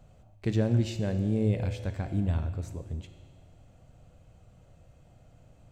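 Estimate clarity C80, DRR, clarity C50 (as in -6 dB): 10.5 dB, 7.5 dB, 9.5 dB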